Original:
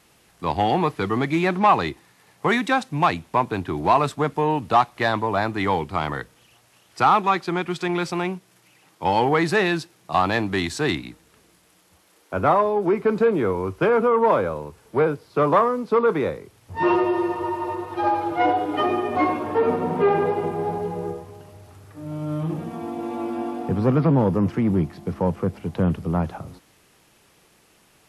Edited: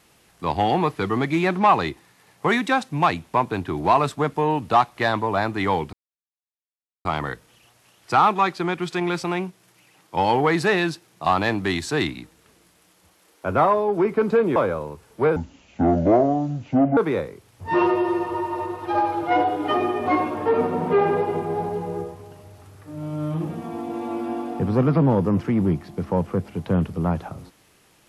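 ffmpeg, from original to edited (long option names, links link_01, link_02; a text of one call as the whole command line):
ffmpeg -i in.wav -filter_complex "[0:a]asplit=5[link_01][link_02][link_03][link_04][link_05];[link_01]atrim=end=5.93,asetpts=PTS-STARTPTS,afade=type=out:start_time=5.926:duration=0.004:curve=hsin,apad=pad_dur=1.12[link_06];[link_02]atrim=start=5.93:end=13.442,asetpts=PTS-STARTPTS,afade=type=in:duration=0.004:curve=hsin[link_07];[link_03]atrim=start=14.308:end=15.114[link_08];[link_04]atrim=start=15.11:end=16.06,asetpts=PTS-STARTPTS,asetrate=26019,aresample=44100,atrim=end_sample=71008,asetpts=PTS-STARTPTS[link_09];[link_05]atrim=start=16.056[link_10];[link_06][link_07]concat=n=2:v=0:a=1[link_11];[link_11][link_08]acrossfade=duration=0.004:curve1=hsin:curve2=hsin[link_12];[link_12][link_09]acrossfade=duration=0.004:curve1=hsin:curve2=hsin[link_13];[link_13][link_10]acrossfade=duration=0.004:curve1=hsin:curve2=hsin" out.wav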